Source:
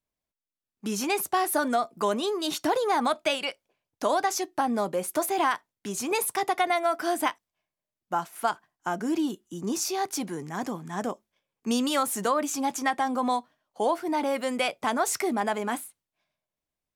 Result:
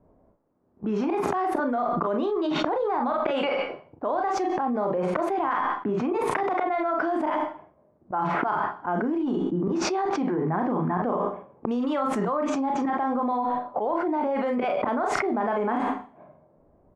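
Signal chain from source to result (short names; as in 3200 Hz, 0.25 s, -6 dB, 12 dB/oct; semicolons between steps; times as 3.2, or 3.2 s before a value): low-pass opened by the level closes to 620 Hz, open at -22.5 dBFS; low shelf 200 Hz -7.5 dB; auto swell 0.118 s; on a send: early reflections 33 ms -7 dB, 45 ms -7 dB; on the sum: added harmonics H 2 -25 dB, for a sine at -9 dBFS; LPF 1200 Hz 12 dB/oct; Schroeder reverb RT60 0.4 s, combs from 30 ms, DRR 16 dB; fast leveller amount 100%; gain -3.5 dB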